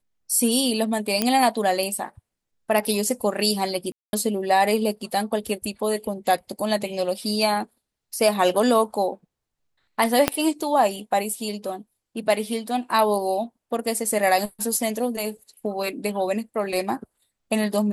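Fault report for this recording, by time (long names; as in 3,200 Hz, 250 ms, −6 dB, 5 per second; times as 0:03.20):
0:01.22: click −5 dBFS
0:03.92–0:04.13: drop-out 211 ms
0:10.28: click −2 dBFS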